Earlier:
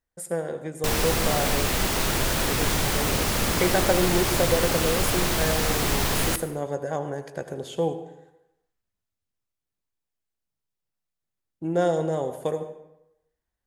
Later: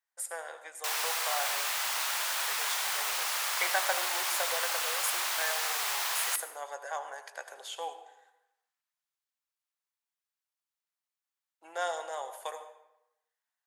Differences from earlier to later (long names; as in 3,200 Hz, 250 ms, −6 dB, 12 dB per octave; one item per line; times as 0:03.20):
background −4.5 dB
master: add high-pass filter 820 Hz 24 dB per octave